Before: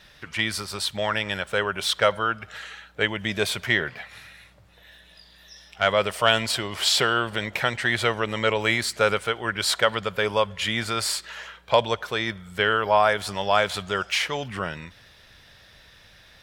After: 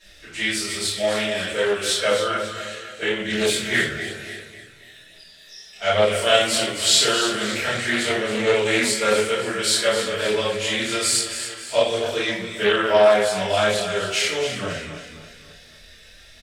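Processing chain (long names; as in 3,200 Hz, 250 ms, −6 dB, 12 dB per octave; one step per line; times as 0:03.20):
graphic EQ with 10 bands 125 Hz −6 dB, 1,000 Hz −9 dB, 8,000 Hz +9 dB
on a send: repeating echo 271 ms, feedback 44%, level −10 dB
on the sum: harmonic and percussive parts rebalanced harmonic +5 dB
low-shelf EQ 160 Hz −6 dB
rectangular room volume 76 cubic metres, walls mixed, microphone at 2.8 metres
multi-voice chorus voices 2, 0.58 Hz, delay 26 ms, depth 2.8 ms
highs frequency-modulated by the lows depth 0.18 ms
level −7.5 dB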